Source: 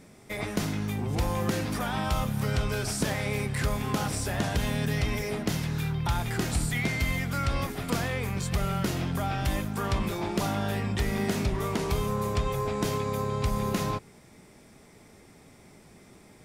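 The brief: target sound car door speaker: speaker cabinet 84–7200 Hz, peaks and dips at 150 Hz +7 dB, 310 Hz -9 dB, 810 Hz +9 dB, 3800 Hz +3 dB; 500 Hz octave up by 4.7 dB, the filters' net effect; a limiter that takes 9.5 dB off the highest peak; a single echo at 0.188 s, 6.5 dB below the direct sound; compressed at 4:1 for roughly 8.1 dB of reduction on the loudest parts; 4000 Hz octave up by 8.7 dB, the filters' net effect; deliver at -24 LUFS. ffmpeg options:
-af "equalizer=f=500:t=o:g=6,equalizer=f=4k:t=o:g=9,acompressor=threshold=-31dB:ratio=4,alimiter=level_in=1dB:limit=-24dB:level=0:latency=1,volume=-1dB,highpass=84,equalizer=f=150:t=q:w=4:g=7,equalizer=f=310:t=q:w=4:g=-9,equalizer=f=810:t=q:w=4:g=9,equalizer=f=3.8k:t=q:w=4:g=3,lowpass=f=7.2k:w=0.5412,lowpass=f=7.2k:w=1.3066,aecho=1:1:188:0.473,volume=8.5dB"

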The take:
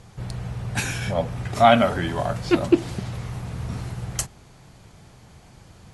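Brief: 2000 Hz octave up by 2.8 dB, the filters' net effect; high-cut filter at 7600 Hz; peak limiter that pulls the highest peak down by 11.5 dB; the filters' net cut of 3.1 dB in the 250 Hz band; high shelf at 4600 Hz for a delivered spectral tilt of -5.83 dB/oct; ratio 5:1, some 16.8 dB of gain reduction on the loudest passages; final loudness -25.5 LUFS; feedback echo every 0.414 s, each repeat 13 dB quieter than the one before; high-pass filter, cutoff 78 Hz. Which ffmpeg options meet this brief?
-af "highpass=78,lowpass=7.6k,equalizer=f=250:t=o:g=-4.5,equalizer=f=2k:t=o:g=5,highshelf=f=4.6k:g=-6.5,acompressor=threshold=-29dB:ratio=5,alimiter=level_in=1.5dB:limit=-24dB:level=0:latency=1,volume=-1.5dB,aecho=1:1:414|828|1242:0.224|0.0493|0.0108,volume=10.5dB"

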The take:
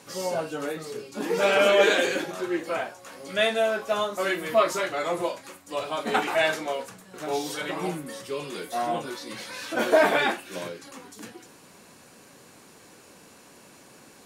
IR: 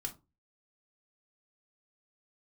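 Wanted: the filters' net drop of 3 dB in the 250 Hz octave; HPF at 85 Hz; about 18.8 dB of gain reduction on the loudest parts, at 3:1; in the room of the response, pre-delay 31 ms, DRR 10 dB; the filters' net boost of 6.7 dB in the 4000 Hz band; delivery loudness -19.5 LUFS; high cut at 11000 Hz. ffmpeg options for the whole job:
-filter_complex "[0:a]highpass=85,lowpass=11k,equalizer=f=250:t=o:g=-4.5,equalizer=f=4k:t=o:g=8.5,acompressor=threshold=-41dB:ratio=3,asplit=2[a][b];[1:a]atrim=start_sample=2205,adelay=31[c];[b][c]afir=irnorm=-1:irlink=0,volume=-9dB[d];[a][d]amix=inputs=2:normalize=0,volume=20.5dB"

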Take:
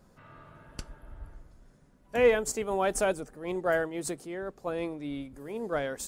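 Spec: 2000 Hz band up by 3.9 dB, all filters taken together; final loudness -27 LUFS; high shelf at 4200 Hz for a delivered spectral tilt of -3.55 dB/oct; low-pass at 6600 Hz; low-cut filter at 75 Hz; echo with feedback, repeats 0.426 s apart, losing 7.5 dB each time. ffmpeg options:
-af "highpass=75,lowpass=6.6k,equalizer=f=2k:t=o:g=6.5,highshelf=f=4.2k:g=-7.5,aecho=1:1:426|852|1278|1704|2130:0.422|0.177|0.0744|0.0312|0.0131,volume=2dB"

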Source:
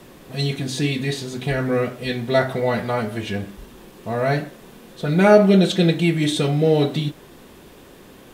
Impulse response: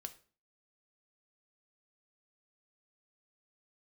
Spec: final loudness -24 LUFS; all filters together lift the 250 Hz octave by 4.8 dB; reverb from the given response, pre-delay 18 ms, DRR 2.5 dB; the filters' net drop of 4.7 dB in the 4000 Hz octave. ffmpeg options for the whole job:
-filter_complex "[0:a]equalizer=f=250:t=o:g=7,equalizer=f=4k:t=o:g=-5.5,asplit=2[a][b];[1:a]atrim=start_sample=2205,adelay=18[c];[b][c]afir=irnorm=-1:irlink=0,volume=2dB[d];[a][d]amix=inputs=2:normalize=0,volume=-8dB"

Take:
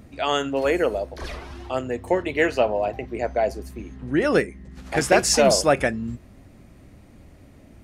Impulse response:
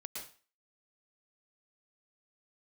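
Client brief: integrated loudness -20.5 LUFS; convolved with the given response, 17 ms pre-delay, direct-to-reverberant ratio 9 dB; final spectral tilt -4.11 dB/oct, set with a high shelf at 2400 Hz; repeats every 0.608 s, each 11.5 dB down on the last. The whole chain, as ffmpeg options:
-filter_complex "[0:a]highshelf=f=2.4k:g=-3,aecho=1:1:608|1216|1824:0.266|0.0718|0.0194,asplit=2[a][b];[1:a]atrim=start_sample=2205,adelay=17[c];[b][c]afir=irnorm=-1:irlink=0,volume=-7dB[d];[a][d]amix=inputs=2:normalize=0,volume=2.5dB"

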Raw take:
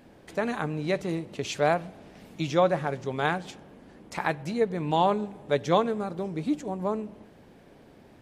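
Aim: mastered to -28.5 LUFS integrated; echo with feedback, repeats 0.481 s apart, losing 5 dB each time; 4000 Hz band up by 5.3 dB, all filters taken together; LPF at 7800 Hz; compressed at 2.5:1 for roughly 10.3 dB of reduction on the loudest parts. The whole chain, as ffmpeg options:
-af "lowpass=7.8k,equalizer=f=4k:t=o:g=6.5,acompressor=threshold=-33dB:ratio=2.5,aecho=1:1:481|962|1443|1924|2405|2886|3367:0.562|0.315|0.176|0.0988|0.0553|0.031|0.0173,volume=6dB"

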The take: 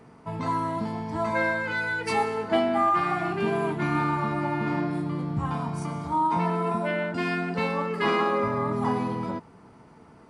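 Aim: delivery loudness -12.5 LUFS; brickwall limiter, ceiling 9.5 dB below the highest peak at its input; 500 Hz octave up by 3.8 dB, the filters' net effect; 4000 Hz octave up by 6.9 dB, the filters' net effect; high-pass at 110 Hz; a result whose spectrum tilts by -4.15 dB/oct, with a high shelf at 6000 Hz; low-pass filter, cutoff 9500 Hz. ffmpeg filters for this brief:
-af "highpass=110,lowpass=9.5k,equalizer=f=500:t=o:g=5,equalizer=f=4k:t=o:g=7,highshelf=f=6k:g=7.5,volume=14dB,alimiter=limit=-3dB:level=0:latency=1"

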